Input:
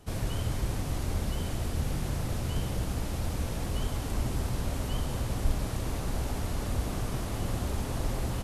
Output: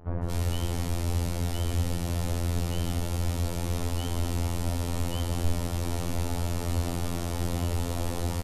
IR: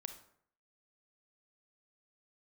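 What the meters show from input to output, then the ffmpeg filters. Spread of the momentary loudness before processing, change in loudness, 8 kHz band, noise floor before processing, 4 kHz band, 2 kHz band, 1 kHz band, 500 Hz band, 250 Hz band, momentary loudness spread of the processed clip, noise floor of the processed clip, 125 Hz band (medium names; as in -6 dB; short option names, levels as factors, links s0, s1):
2 LU, +2.5 dB, +3.0 dB, -35 dBFS, +3.0 dB, +0.5 dB, +2.0 dB, +3.0 dB, +3.0 dB, 2 LU, -32 dBFS, +3.5 dB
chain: -filter_complex "[0:a]afftfilt=real='hypot(re,im)*cos(PI*b)':imag='0':win_size=2048:overlap=0.75,asplit=2[s0][s1];[s1]alimiter=level_in=1.12:limit=0.0631:level=0:latency=1:release=53,volume=0.891,volume=0.841[s2];[s0][s2]amix=inputs=2:normalize=0,bandreject=f=60:t=h:w=6,bandreject=f=120:t=h:w=6,bandreject=f=180:t=h:w=6,bandreject=f=240:t=h:w=6,bandreject=f=300:t=h:w=6,bandreject=f=360:t=h:w=6,bandreject=f=420:t=h:w=6,acrossover=split=1500[s3][s4];[s4]adelay=230[s5];[s3][s5]amix=inputs=2:normalize=0,volume=1.5"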